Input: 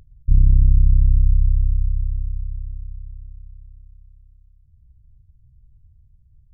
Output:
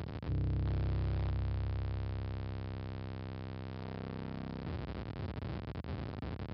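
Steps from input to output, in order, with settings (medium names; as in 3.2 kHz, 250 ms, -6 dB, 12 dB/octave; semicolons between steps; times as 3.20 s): jump at every zero crossing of -21 dBFS; high-pass 75 Hz 24 dB/octave; saturation -22 dBFS, distortion -11 dB; resampled via 11.025 kHz; trim -8 dB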